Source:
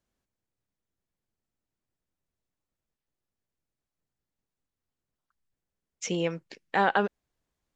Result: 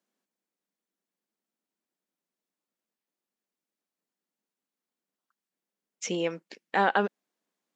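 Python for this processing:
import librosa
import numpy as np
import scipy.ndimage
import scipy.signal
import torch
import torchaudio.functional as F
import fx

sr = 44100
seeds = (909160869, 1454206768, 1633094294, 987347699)

y = fx.brickwall_highpass(x, sr, low_hz=170.0)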